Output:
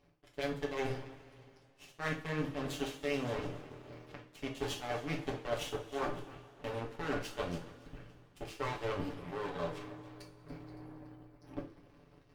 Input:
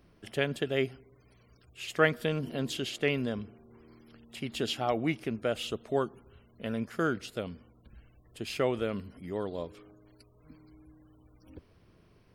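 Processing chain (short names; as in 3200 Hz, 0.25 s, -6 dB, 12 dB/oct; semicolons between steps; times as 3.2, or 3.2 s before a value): minimum comb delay 6.9 ms; high shelf 6000 Hz -7.5 dB; reverse; compressor 8:1, threshold -47 dBFS, peak gain reduction 25.5 dB; reverse; sample leveller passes 1; on a send: split-band echo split 380 Hz, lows 96 ms, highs 0.282 s, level -12 dB; on the sum: power-law curve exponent 2; two-slope reverb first 0.33 s, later 2.8 s, from -21 dB, DRR -0.5 dB; gain +12.5 dB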